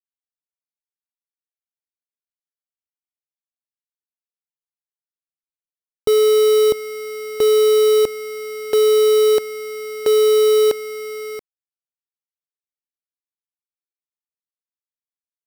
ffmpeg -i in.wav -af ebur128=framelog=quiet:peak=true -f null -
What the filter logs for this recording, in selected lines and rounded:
Integrated loudness:
  I:         -15.6 LUFS
  Threshold: -26.8 LUFS
Loudness range:
  LRA:         8.7 LU
  Threshold: -38.4 LUFS
  LRA low:   -24.7 LUFS
  LRA high:  -16.1 LUFS
True peak:
  Peak:       -8.9 dBFS